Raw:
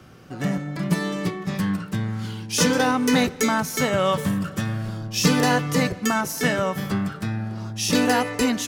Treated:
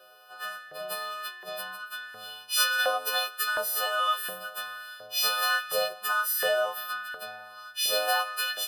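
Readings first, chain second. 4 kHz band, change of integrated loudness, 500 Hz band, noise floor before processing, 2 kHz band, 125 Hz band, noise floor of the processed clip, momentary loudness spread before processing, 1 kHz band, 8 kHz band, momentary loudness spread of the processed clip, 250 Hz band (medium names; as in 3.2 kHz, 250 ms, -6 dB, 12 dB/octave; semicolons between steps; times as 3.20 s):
0.0 dB, -5.0 dB, -7.0 dB, -38 dBFS, -1.5 dB, under -35 dB, -48 dBFS, 9 LU, -4.0 dB, -5.5 dB, 14 LU, -38.0 dB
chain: partials quantised in pitch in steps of 3 st; static phaser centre 1.4 kHz, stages 8; LFO high-pass saw up 1.4 Hz 520–1800 Hz; trim -6 dB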